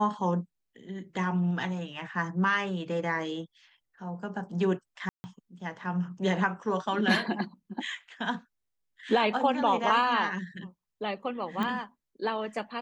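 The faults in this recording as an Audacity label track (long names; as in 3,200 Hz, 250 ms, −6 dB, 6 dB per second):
5.090000	5.240000	drop-out 150 ms
11.630000	11.630000	click −19 dBFS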